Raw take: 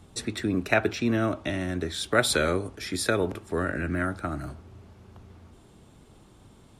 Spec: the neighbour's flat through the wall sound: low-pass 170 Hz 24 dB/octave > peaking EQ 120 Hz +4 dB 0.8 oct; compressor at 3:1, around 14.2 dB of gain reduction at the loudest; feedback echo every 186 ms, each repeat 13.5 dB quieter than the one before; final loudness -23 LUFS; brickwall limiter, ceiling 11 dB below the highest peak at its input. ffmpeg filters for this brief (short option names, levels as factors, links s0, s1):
-af "acompressor=threshold=0.0158:ratio=3,alimiter=level_in=1.88:limit=0.0631:level=0:latency=1,volume=0.531,lowpass=f=170:w=0.5412,lowpass=f=170:w=1.3066,equalizer=f=120:t=o:w=0.8:g=4,aecho=1:1:186|372:0.211|0.0444,volume=15.8"